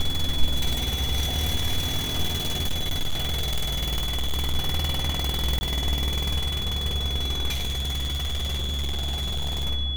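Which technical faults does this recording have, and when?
whine 3.4 kHz -29 dBFS
2.37–4.56 s: clipped -20.5 dBFS
5.59–5.61 s: dropout 20 ms
7.52–9.65 s: clipped -23.5 dBFS

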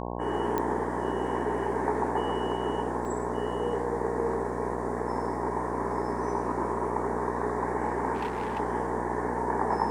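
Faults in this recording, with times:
buzz 60 Hz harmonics 18 -34 dBFS
0.58 s: pop -15 dBFS
3.05 s: dropout 2.2 ms
8.14–8.60 s: clipped -27 dBFS

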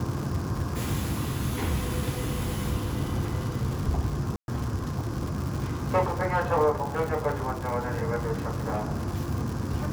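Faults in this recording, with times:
crackle 160 per s -31 dBFS
4.36–4.48 s: dropout 121 ms

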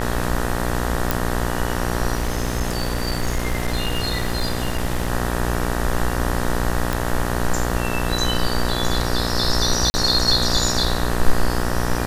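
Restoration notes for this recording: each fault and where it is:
buzz 60 Hz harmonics 32 -24 dBFS
1.11 s: pop
2.15–5.11 s: clipped -16.5 dBFS
6.93 s: pop
9.90–9.94 s: dropout 40 ms

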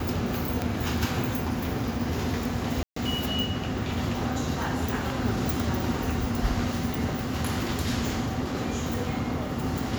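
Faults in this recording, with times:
0.62 s: pop -13 dBFS
2.83–2.96 s: dropout 134 ms

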